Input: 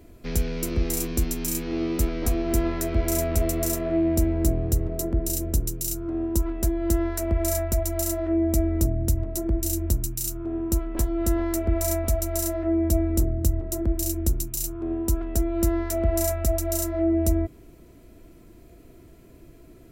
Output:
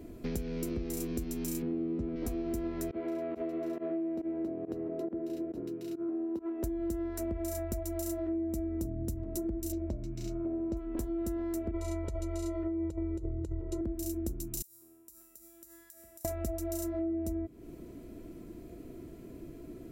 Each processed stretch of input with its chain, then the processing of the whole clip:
1.62–2.16 BPF 110–3600 Hz + tilt -3 dB/oct
2.91–6.64 HPF 320 Hz + air absorption 380 m + pump 138 bpm, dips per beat 1, -23 dB, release 92 ms
9.72–10.77 air absorption 190 m + small resonant body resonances 610/2200 Hz, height 16 dB, ringing for 65 ms
11.71–13.81 LPF 4800 Hz + negative-ratio compressor -23 dBFS, ratio -0.5 + comb 2.1 ms, depth 94%
14.62–16.25 pre-emphasis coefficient 0.97 + resonator 120 Hz, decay 0.91 s, mix 80% + compressor 10:1, threshold -46 dBFS
whole clip: bell 280 Hz +9 dB 2 oct; compressor, threshold -30 dBFS; gain -3 dB

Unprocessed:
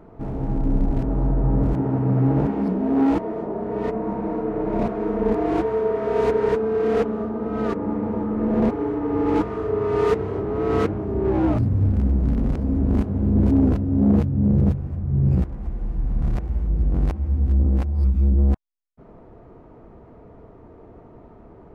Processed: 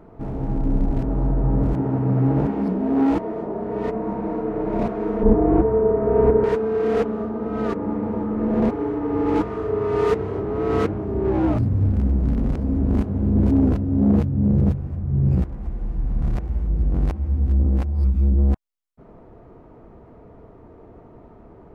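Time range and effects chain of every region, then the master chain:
5.23–6.44 LPF 1600 Hz + tilt -3 dB/oct
whole clip: dry

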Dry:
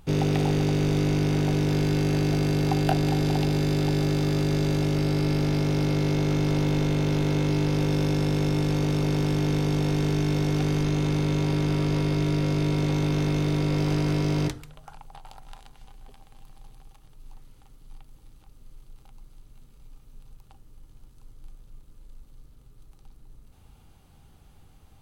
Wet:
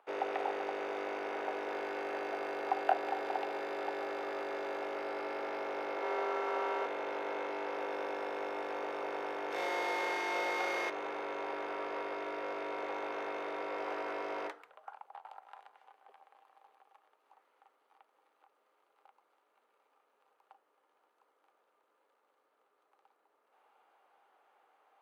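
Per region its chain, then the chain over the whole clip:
5.97–6.86 HPF 220 Hz 24 dB/oct + bell 990 Hz +3 dB 0.83 oct + flutter echo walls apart 9.4 m, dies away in 0.77 s
9.51–10.9 high shelf 3200 Hz +10.5 dB + flutter echo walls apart 5.9 m, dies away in 0.98 s
whole clip: HPF 400 Hz 24 dB/oct; three-band isolator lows -14 dB, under 510 Hz, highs -24 dB, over 2100 Hz

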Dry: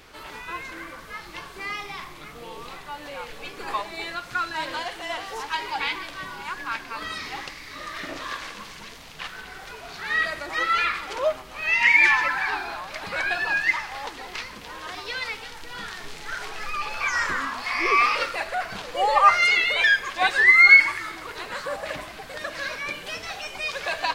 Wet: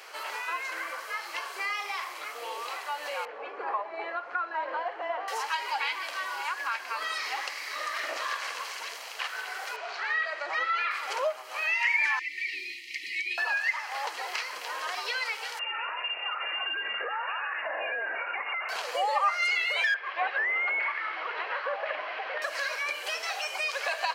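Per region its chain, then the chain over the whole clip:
3.25–5.28 LPF 1300 Hz + low shelf 260 Hz +10.5 dB
9.76–10.91 air absorption 130 m + notch 260 Hz, Q 7.3
12.19–13.38 brick-wall FIR band-stop 390–1800 Hz + high shelf 5100 Hz -11 dB
15.59–18.69 compressor, threshold -30 dBFS + inverted band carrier 2800 Hz
19.94–22.42 delta modulation 32 kbps, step -31.5 dBFS + LPF 2900 Hz 24 dB/oct
whole clip: HPF 510 Hz 24 dB/oct; notch 3600 Hz, Q 8.5; compressor 2.5:1, threshold -35 dBFS; gain +4.5 dB

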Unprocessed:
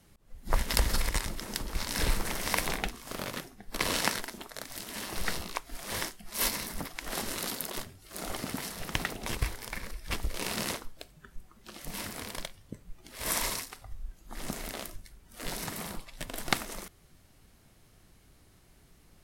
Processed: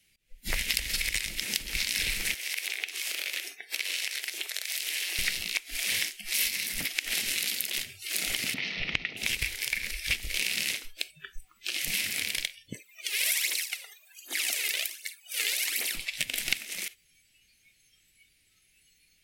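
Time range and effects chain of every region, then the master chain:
2.34–5.19 HPF 320 Hz + compressor 5:1, threshold -44 dBFS
8.54–9.17 air absorption 280 m + notch 1600 Hz, Q 6.6
12.75–15.95 high shelf 9100 Hz +2.5 dB + phaser 1.3 Hz, delay 2.5 ms, feedback 65% + HPF 310 Hz 24 dB/oct
whole clip: spectral noise reduction 19 dB; resonant high shelf 1600 Hz +13.5 dB, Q 3; compressor 5:1, threshold -30 dBFS; gain +2.5 dB

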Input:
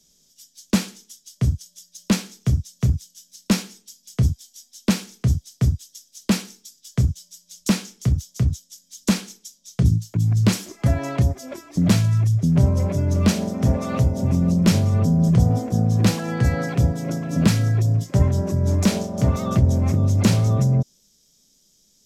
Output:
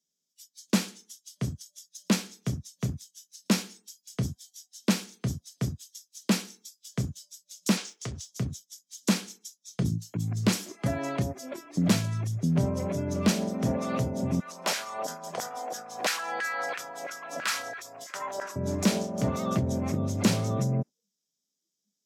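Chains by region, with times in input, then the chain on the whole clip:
7.77–8.27 LPF 8200 Hz + bell 190 Hz -14.5 dB 1.6 oct + sample leveller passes 1
14.4–18.56 LFO high-pass saw down 3 Hz 640–1700 Hz + sustainer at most 91 dB/s
whole clip: spectral noise reduction 20 dB; HPF 180 Hz 12 dB/oct; gain -3.5 dB

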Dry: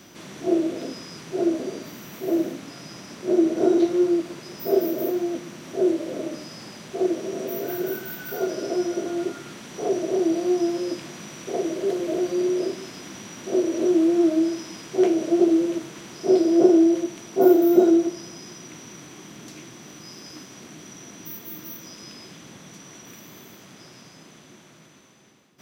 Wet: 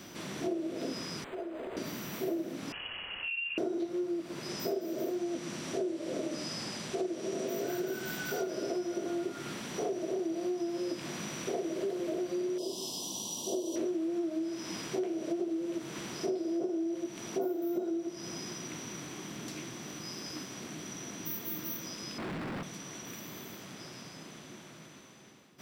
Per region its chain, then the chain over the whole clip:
1.24–1.77 compressor, threshold -29 dBFS + HPF 550 Hz + decimation joined by straight lines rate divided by 8×
2.72–3.58 inverted band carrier 3100 Hz + dynamic EQ 580 Hz, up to -7 dB, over -45 dBFS, Q 1 + compressor, threshold -33 dBFS
4.49–8.43 LPF 8100 Hz + high shelf 6200 Hz +10 dB
12.58–13.76 elliptic band-stop 1000–3100 Hz + tilt +2.5 dB/oct
22.18–22.63 LPF 2000 Hz 24 dB/oct + sample leveller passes 5
whole clip: notch 6500 Hz, Q 14; compressor 10:1, threshold -31 dBFS

